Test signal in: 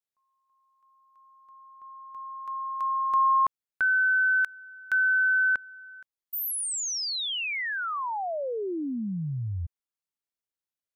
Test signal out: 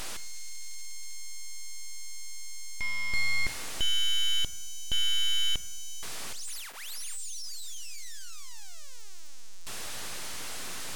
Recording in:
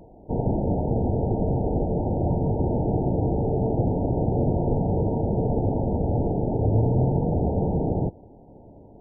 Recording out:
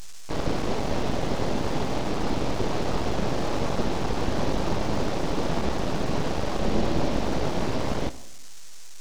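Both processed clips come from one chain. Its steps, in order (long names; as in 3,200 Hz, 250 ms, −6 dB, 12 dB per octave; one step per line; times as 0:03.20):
linear delta modulator 32 kbit/s, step −27 dBFS
full-wave rectification
coupled-rooms reverb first 0.9 s, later 2.6 s, from −23 dB, DRR 13 dB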